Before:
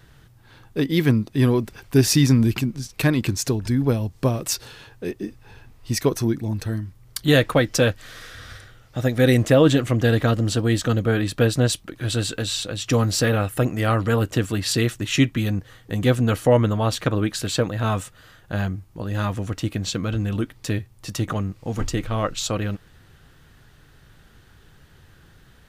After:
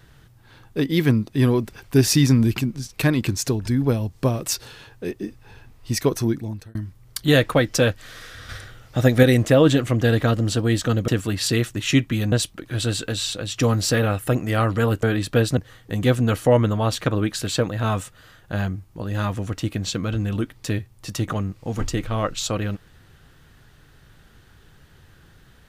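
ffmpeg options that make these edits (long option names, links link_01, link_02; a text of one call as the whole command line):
ffmpeg -i in.wav -filter_complex "[0:a]asplit=8[link_01][link_02][link_03][link_04][link_05][link_06][link_07][link_08];[link_01]atrim=end=6.75,asetpts=PTS-STARTPTS,afade=type=out:start_time=6.33:duration=0.42[link_09];[link_02]atrim=start=6.75:end=8.492,asetpts=PTS-STARTPTS,afade=type=in:duration=0.004:curve=hsin[link_10];[link_03]atrim=start=8.488:end=9.232,asetpts=PTS-STARTPTS,volume=5dB[link_11];[link_04]atrim=start=9.228:end=11.082[link_12];[link_05]atrim=start=14.328:end=15.572[link_13];[link_06]atrim=start=11.618:end=14.332[link_14];[link_07]atrim=start=11.078:end=11.622[link_15];[link_08]atrim=start=15.568[link_16];[link_09][link_10]concat=n=2:v=0:a=1[link_17];[link_17][link_11]acrossfade=duration=0.004:curve1=hsin:curve2=hsin[link_18];[link_18][link_12]acrossfade=duration=0.004:curve1=hsin:curve2=hsin[link_19];[link_19][link_13]acrossfade=duration=0.004:curve1=hsin:curve2=hsin[link_20];[link_20][link_14]acrossfade=duration=0.004:curve1=hsin:curve2=hsin[link_21];[link_21][link_15]acrossfade=duration=0.004:curve1=hsin:curve2=hsin[link_22];[link_22][link_16]acrossfade=duration=0.004:curve1=hsin:curve2=hsin" out.wav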